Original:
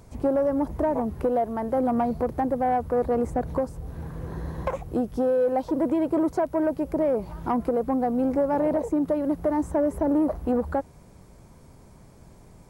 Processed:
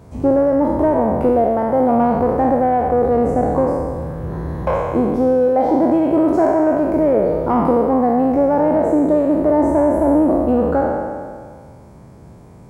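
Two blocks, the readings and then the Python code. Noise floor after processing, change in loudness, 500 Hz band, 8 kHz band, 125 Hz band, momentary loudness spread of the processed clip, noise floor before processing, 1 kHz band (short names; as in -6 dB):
-41 dBFS, +9.5 dB, +10.0 dB, n/a, +10.0 dB, 6 LU, -51 dBFS, +10.0 dB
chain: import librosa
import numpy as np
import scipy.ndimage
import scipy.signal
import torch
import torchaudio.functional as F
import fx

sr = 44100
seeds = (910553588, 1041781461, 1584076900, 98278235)

y = fx.spec_trails(x, sr, decay_s=1.86)
y = scipy.signal.sosfilt(scipy.signal.butter(2, 62.0, 'highpass', fs=sr, output='sos'), y)
y = fx.high_shelf(y, sr, hz=2000.0, db=-10.5)
y = y * 10.0 ** (7.0 / 20.0)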